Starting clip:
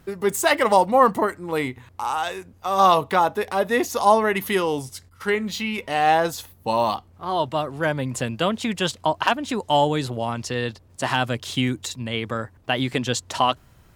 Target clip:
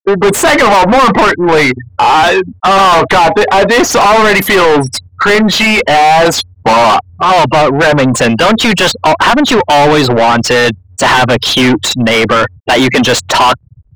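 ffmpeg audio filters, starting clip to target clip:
ffmpeg -i in.wav -filter_complex "[0:a]afftfilt=real='re*gte(hypot(re,im),0.0224)':imag='im*gte(hypot(re,im),0.0224)':win_size=1024:overlap=0.75,asplit=2[link_01][link_02];[link_02]highpass=frequency=720:poles=1,volume=36dB,asoftclip=type=tanh:threshold=-3.5dB[link_03];[link_01][link_03]amix=inputs=2:normalize=0,lowpass=frequency=2400:poles=1,volume=-6dB,acontrast=52" out.wav

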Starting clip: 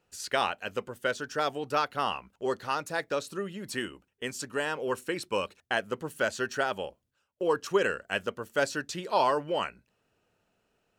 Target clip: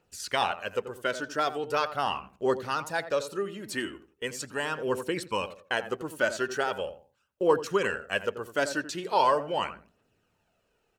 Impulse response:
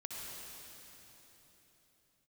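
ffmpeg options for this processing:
-filter_complex "[0:a]asplit=2[link_01][link_02];[link_02]adelay=85,lowpass=frequency=1300:poles=1,volume=-10.5dB,asplit=2[link_03][link_04];[link_04]adelay=85,lowpass=frequency=1300:poles=1,volume=0.29,asplit=2[link_05][link_06];[link_06]adelay=85,lowpass=frequency=1300:poles=1,volume=0.29[link_07];[link_01][link_03][link_05][link_07]amix=inputs=4:normalize=0,aphaser=in_gain=1:out_gain=1:delay=3.4:decay=0.39:speed=0.4:type=triangular"

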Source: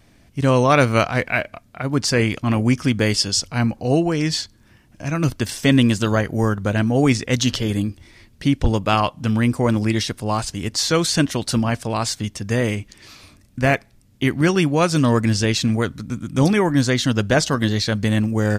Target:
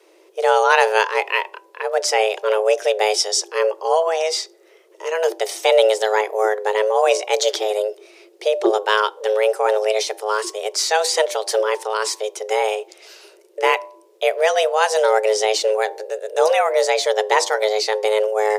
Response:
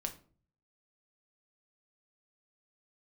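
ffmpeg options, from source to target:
-filter_complex "[0:a]afreqshift=320,bandreject=frequency=99.35:width_type=h:width=4,bandreject=frequency=198.7:width_type=h:width=4,bandreject=frequency=298.05:width_type=h:width=4,bandreject=frequency=397.4:width_type=h:width=4,bandreject=frequency=496.75:width_type=h:width=4,bandreject=frequency=596.1:width_type=h:width=4,bandreject=frequency=695.45:width_type=h:width=4,bandreject=frequency=794.8:width_type=h:width=4,bandreject=frequency=894.15:width_type=h:width=4,bandreject=frequency=993.5:width_type=h:width=4,bandreject=frequency=1092.85:width_type=h:width=4,asplit=2[link_01][link_02];[1:a]atrim=start_sample=2205[link_03];[link_02][link_03]afir=irnorm=-1:irlink=0,volume=-14.5dB[link_04];[link_01][link_04]amix=inputs=2:normalize=0,volume=-1dB"

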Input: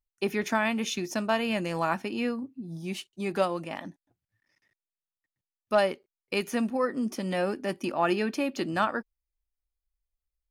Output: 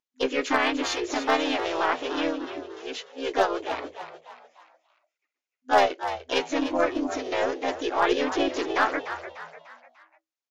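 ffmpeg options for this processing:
ffmpeg -i in.wav -filter_complex "[0:a]asplit=4[link_01][link_02][link_03][link_04];[link_02]asetrate=29433,aresample=44100,atempo=1.49831,volume=-6dB[link_05];[link_03]asetrate=52444,aresample=44100,atempo=0.840896,volume=-1dB[link_06];[link_04]asetrate=58866,aresample=44100,atempo=0.749154,volume=-3dB[link_07];[link_01][link_05][link_06][link_07]amix=inputs=4:normalize=0,afftfilt=real='re*between(b*sr/4096,250,7300)':imag='im*between(b*sr/4096,250,7300)':win_size=4096:overlap=0.75,aeval=exprs='0.282*(cos(1*acos(clip(val(0)/0.282,-1,1)))-cos(1*PI/2))+0.00794*(cos(3*acos(clip(val(0)/0.282,-1,1)))-cos(3*PI/2))+0.0112*(cos(4*acos(clip(val(0)/0.282,-1,1)))-cos(4*PI/2))':channel_layout=same,asplit=2[link_08][link_09];[link_09]asplit=4[link_10][link_11][link_12][link_13];[link_10]adelay=297,afreqshift=80,volume=-11dB[link_14];[link_11]adelay=594,afreqshift=160,volume=-18.3dB[link_15];[link_12]adelay=891,afreqshift=240,volume=-25.7dB[link_16];[link_13]adelay=1188,afreqshift=320,volume=-33dB[link_17];[link_14][link_15][link_16][link_17]amix=inputs=4:normalize=0[link_18];[link_08][link_18]amix=inputs=2:normalize=0" out.wav

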